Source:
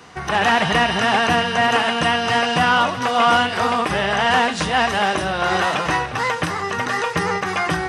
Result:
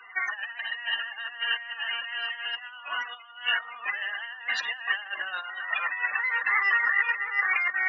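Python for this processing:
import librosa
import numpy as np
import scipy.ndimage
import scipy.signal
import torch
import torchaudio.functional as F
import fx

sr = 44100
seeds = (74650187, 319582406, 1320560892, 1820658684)

y = fx.spec_topn(x, sr, count=32)
y = fx.peak_eq(y, sr, hz=4600.0, db=-4.0, octaves=2.3)
y = fx.echo_multitap(y, sr, ms=(44, 211), db=(-18.5, -19.5))
y = fx.over_compress(y, sr, threshold_db=-26.0, ratio=-0.5)
y = fx.highpass_res(y, sr, hz=2100.0, q=2.9)
y = fx.high_shelf(y, sr, hz=6200.0, db=-10.0)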